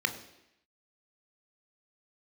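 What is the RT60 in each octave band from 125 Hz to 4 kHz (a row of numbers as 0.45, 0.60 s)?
0.70, 0.85, 0.85, 0.85, 0.95, 0.85 s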